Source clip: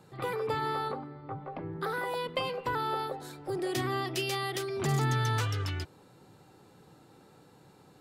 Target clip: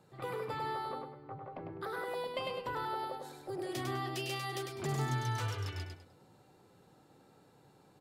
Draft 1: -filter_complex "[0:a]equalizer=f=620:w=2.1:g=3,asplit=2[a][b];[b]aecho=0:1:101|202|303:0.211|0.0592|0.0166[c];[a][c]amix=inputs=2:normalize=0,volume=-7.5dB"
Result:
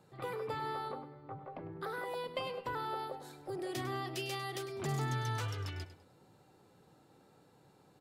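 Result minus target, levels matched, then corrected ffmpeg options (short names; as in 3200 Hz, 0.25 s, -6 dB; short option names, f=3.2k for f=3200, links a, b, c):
echo-to-direct -9 dB
-filter_complex "[0:a]equalizer=f=620:w=2.1:g=3,asplit=2[a][b];[b]aecho=0:1:101|202|303|404:0.596|0.167|0.0467|0.0131[c];[a][c]amix=inputs=2:normalize=0,volume=-7.5dB"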